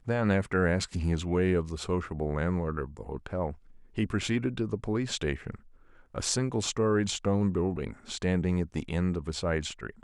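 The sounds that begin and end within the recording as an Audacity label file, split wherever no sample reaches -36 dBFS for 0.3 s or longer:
3.980000	5.550000	sound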